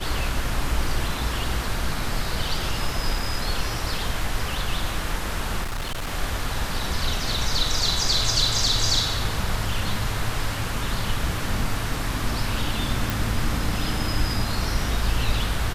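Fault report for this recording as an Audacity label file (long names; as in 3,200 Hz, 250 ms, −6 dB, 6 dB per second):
5.630000	6.120000	clipping −25 dBFS
13.100000	13.100000	click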